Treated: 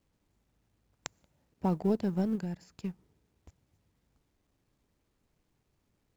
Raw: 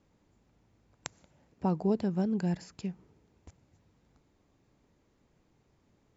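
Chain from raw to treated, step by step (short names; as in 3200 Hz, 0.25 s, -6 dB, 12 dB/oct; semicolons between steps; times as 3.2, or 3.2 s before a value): G.711 law mismatch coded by A; 2.35–2.75 compressor, threshold -34 dBFS, peak gain reduction 7 dB; low shelf 73 Hz +8 dB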